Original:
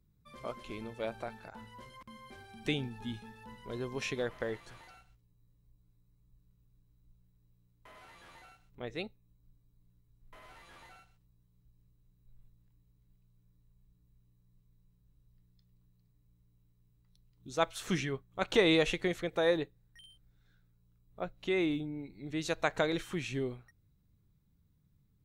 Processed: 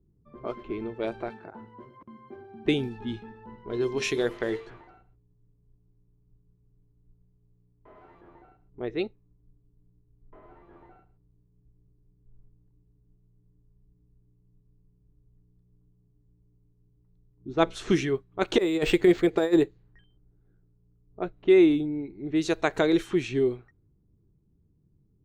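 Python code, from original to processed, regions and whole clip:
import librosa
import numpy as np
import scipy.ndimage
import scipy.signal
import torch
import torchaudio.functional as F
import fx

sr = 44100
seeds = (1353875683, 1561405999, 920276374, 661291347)

y = fx.chain(x, sr, fx.highpass(hz=110.0, slope=12),
    fx.high_shelf(hz=6600.0, db=10.0), at=(1.3, 2.66))
y = fx.chain(y, sr, fx.high_shelf(hz=2600.0, db=6.5),
    fx.hum_notches(base_hz=50, count=10), at=(3.28, 8.21))
y = fx.chain(y, sr, fx.lowpass(hz=6900.0, slope=12),
    fx.low_shelf(hz=270.0, db=7.5),
    fx.hum_notches(base_hz=60, count=9), at=(17.48, 17.92))
y = fx.chain(y, sr, fx.over_compress(threshold_db=-30.0, ratio=-0.5),
    fx.resample_linear(factor=4), at=(18.58, 20.04))
y = fx.notch(y, sr, hz=530.0, q=12.0)
y = fx.env_lowpass(y, sr, base_hz=660.0, full_db=-31.0)
y = fx.peak_eq(y, sr, hz=360.0, db=11.0, octaves=0.66)
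y = F.gain(torch.from_numpy(y), 4.0).numpy()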